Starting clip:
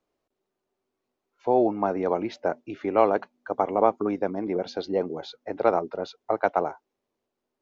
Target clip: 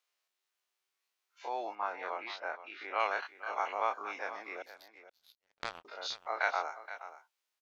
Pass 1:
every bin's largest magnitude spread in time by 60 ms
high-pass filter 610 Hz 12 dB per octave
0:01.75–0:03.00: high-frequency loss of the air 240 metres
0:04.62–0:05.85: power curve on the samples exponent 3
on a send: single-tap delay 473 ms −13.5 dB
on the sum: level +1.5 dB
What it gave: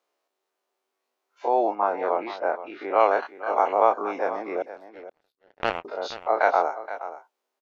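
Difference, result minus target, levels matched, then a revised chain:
2,000 Hz band −7.5 dB
every bin's largest magnitude spread in time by 60 ms
high-pass filter 1,900 Hz 12 dB per octave
0:01.75–0:03.00: high-frequency loss of the air 240 metres
0:04.62–0:05.85: power curve on the samples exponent 3
on a send: single-tap delay 473 ms −13.5 dB
on the sum: level +1.5 dB

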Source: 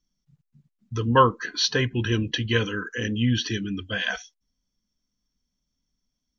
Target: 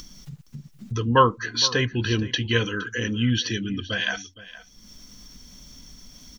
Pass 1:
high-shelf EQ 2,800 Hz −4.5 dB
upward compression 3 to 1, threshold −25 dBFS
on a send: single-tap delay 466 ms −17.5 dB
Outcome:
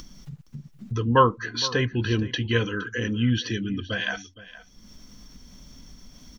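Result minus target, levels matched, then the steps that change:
4,000 Hz band −3.5 dB
change: high-shelf EQ 2,800 Hz +3.5 dB

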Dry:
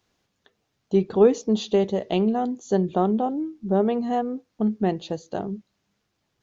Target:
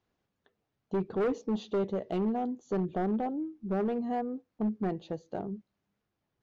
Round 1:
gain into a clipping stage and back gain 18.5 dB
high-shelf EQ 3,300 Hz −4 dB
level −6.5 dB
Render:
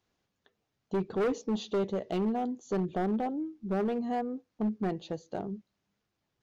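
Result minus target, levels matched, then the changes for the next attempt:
8,000 Hz band +7.5 dB
change: high-shelf EQ 3,300 Hz −14 dB

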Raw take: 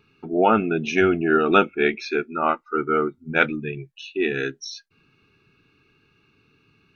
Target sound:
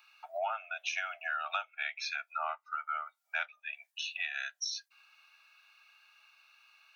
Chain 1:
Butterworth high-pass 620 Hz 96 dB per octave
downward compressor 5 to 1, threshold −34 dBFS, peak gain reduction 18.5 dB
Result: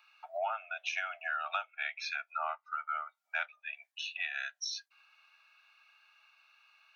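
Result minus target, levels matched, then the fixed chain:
8,000 Hz band −2.5 dB
Butterworth high-pass 620 Hz 96 dB per octave
high-shelf EQ 5,100 Hz +10 dB
downward compressor 5 to 1, threshold −34 dBFS, peak gain reduction 19.5 dB

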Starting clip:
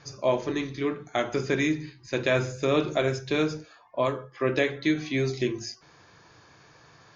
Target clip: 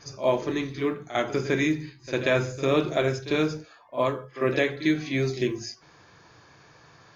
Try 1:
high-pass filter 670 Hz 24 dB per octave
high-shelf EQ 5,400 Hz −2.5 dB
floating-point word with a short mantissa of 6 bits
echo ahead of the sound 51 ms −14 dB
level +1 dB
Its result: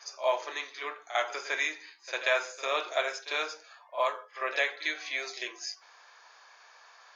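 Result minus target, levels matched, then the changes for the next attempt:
500 Hz band −3.0 dB
remove: high-pass filter 670 Hz 24 dB per octave

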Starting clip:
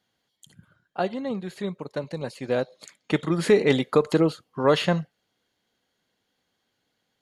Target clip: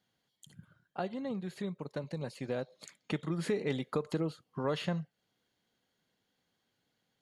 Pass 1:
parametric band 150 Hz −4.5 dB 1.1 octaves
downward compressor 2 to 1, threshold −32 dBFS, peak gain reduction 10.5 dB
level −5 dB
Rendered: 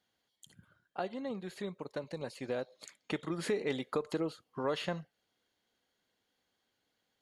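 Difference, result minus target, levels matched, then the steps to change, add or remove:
125 Hz band −6.0 dB
change: parametric band 150 Hz +5 dB 1.1 octaves

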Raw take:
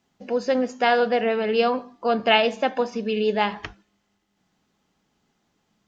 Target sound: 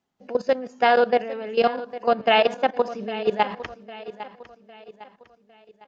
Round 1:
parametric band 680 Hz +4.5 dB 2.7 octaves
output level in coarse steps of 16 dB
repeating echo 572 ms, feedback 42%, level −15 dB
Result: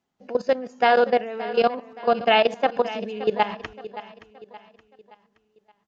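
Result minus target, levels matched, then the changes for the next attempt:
echo 233 ms early
change: repeating echo 805 ms, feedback 42%, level −15 dB

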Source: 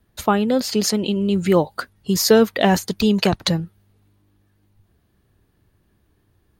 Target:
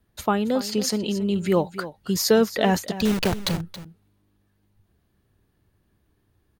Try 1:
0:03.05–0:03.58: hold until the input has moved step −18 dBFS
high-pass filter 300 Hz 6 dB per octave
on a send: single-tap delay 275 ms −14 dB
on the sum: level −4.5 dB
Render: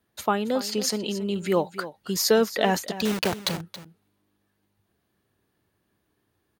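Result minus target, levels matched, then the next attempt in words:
250 Hz band −2.5 dB
0:03.05–0:03.58: hold until the input has moved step −18 dBFS
on a send: single-tap delay 275 ms −14 dB
on the sum: level −4.5 dB

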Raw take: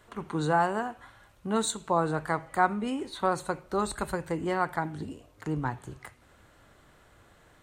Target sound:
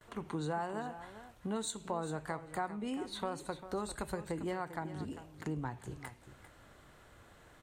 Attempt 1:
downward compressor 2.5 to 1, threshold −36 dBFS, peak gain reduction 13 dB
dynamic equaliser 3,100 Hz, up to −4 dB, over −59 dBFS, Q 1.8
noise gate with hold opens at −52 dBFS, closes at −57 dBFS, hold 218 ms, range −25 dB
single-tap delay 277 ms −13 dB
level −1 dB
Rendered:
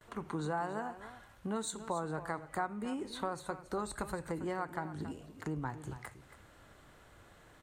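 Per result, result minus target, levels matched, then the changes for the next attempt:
echo 120 ms early; 4,000 Hz band −3.0 dB
change: single-tap delay 397 ms −13 dB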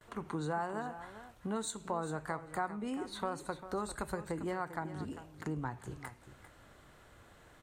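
4,000 Hz band −2.5 dB
change: dynamic equaliser 1,300 Hz, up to −4 dB, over −59 dBFS, Q 1.8

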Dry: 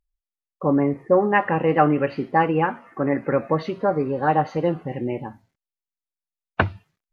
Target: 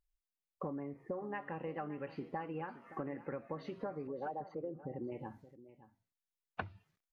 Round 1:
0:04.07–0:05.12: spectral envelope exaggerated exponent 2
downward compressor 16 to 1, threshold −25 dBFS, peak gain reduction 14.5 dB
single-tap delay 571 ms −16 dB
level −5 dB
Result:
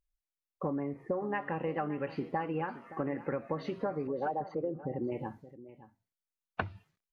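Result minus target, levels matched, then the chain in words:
downward compressor: peak gain reduction −7.5 dB
0:04.07–0:05.12: spectral envelope exaggerated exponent 2
downward compressor 16 to 1, threshold −33 dBFS, peak gain reduction 22 dB
single-tap delay 571 ms −16 dB
level −5 dB

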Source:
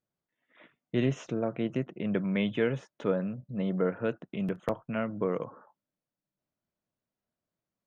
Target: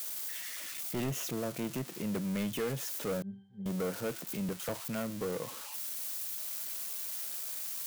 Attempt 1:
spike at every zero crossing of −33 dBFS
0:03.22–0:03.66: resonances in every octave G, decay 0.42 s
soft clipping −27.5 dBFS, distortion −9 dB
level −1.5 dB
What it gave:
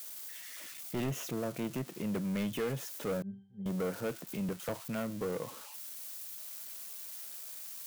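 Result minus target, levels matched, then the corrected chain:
spike at every zero crossing: distortion −7 dB
spike at every zero crossing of −26 dBFS
0:03.22–0:03.66: resonances in every octave G, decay 0.42 s
soft clipping −27.5 dBFS, distortion −10 dB
level −1.5 dB

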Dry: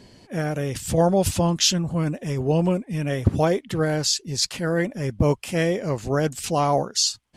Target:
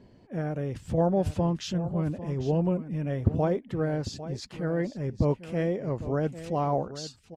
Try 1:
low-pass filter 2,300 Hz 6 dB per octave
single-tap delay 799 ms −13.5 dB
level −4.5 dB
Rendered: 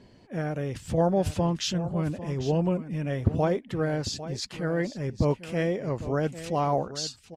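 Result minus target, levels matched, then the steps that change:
2,000 Hz band +4.0 dB
change: low-pass filter 870 Hz 6 dB per octave

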